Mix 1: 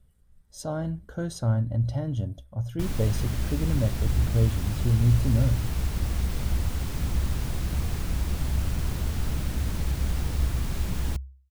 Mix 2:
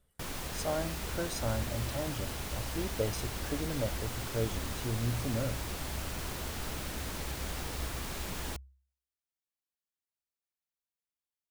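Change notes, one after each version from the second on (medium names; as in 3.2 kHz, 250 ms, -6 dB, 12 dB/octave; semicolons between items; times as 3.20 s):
background: entry -2.60 s; master: add tone controls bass -14 dB, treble 0 dB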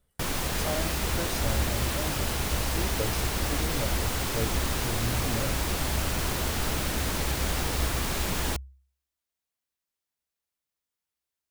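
background +9.5 dB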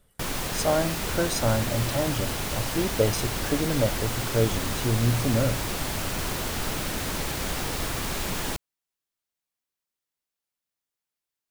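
speech +10.0 dB; master: add peaking EQ 66 Hz -14.5 dB 0.23 oct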